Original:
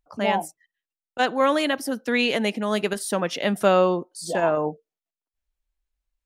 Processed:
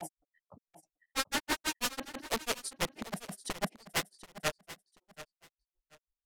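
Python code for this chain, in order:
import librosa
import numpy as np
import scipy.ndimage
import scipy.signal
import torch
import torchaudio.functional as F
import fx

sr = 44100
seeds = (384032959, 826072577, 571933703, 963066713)

p1 = (np.mod(10.0 ** (19.5 / 20.0) * x + 1.0, 2.0) - 1.0) / 10.0 ** (19.5 / 20.0)
p2 = fx.env_lowpass(p1, sr, base_hz=390.0, full_db=-25.5)
p3 = fx.granulator(p2, sr, seeds[0], grain_ms=94.0, per_s=6.1, spray_ms=487.0, spread_st=0)
p4 = p3 + fx.echo_feedback(p3, sr, ms=734, feedback_pct=22, wet_db=-15.5, dry=0)
y = p4 * 10.0 ** (-3.0 / 20.0)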